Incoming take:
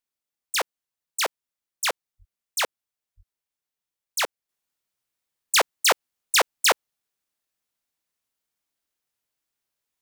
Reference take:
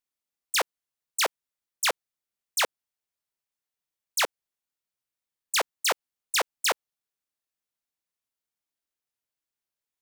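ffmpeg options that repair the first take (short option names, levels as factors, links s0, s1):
-filter_complex "[0:a]asplit=3[s0][s1][s2];[s0]afade=t=out:st=2.18:d=0.02[s3];[s1]highpass=f=140:w=0.5412,highpass=f=140:w=1.3066,afade=t=in:st=2.18:d=0.02,afade=t=out:st=2.3:d=0.02[s4];[s2]afade=t=in:st=2.3:d=0.02[s5];[s3][s4][s5]amix=inputs=3:normalize=0,asplit=3[s6][s7][s8];[s6]afade=t=out:st=3.16:d=0.02[s9];[s7]highpass=f=140:w=0.5412,highpass=f=140:w=1.3066,afade=t=in:st=3.16:d=0.02,afade=t=out:st=3.28:d=0.02[s10];[s8]afade=t=in:st=3.28:d=0.02[s11];[s9][s10][s11]amix=inputs=3:normalize=0,asetnsamples=n=441:p=0,asendcmd='4.49 volume volume -6dB',volume=1"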